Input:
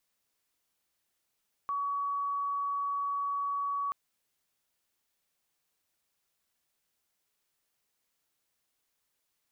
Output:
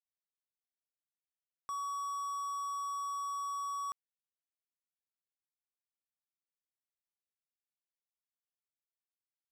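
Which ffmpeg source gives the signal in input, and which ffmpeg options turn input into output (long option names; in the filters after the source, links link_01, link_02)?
-f lavfi -i "sine=frequency=1130:duration=2.23:sample_rate=44100,volume=-11.44dB"
-af "alimiter=level_in=11dB:limit=-24dB:level=0:latency=1,volume=-11dB,acrusher=bits=6:mix=0:aa=0.5"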